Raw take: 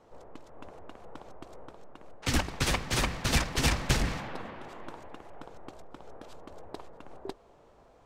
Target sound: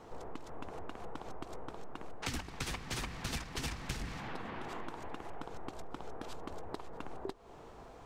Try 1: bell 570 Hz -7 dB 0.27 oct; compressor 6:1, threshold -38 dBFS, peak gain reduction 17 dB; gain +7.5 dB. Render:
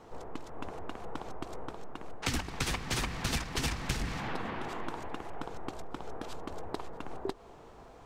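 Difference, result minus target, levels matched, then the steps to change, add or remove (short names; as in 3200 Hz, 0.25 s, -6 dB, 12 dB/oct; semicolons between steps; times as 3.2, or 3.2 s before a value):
compressor: peak gain reduction -6.5 dB
change: compressor 6:1, threshold -45.5 dBFS, peak gain reduction 23 dB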